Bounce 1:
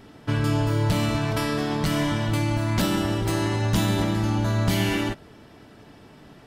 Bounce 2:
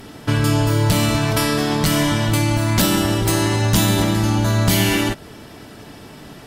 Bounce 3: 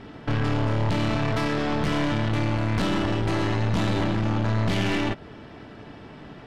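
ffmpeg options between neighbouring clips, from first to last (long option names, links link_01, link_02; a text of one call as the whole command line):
ffmpeg -i in.wav -filter_complex "[0:a]asplit=2[link_01][link_02];[link_02]acompressor=threshold=-31dB:ratio=6,volume=-1.5dB[link_03];[link_01][link_03]amix=inputs=2:normalize=0,aemphasis=mode=production:type=cd,volume=4dB" out.wav
ffmpeg -i in.wav -af "lowpass=2800,aeval=exprs='(tanh(11.2*val(0)+0.65)-tanh(0.65))/11.2':channel_layout=same" out.wav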